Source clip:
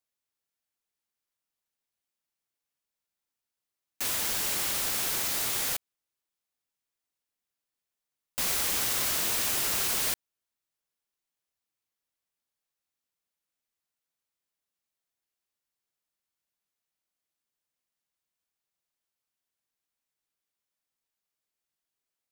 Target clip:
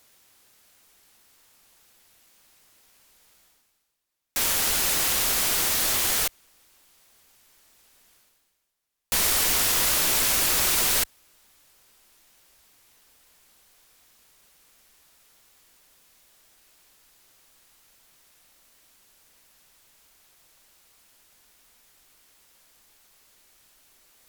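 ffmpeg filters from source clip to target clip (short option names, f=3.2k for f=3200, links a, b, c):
-af "asubboost=boost=2:cutoff=73,areverse,acompressor=mode=upward:threshold=-46dB:ratio=2.5,areverse,asetrate=40517,aresample=44100,volume=6dB"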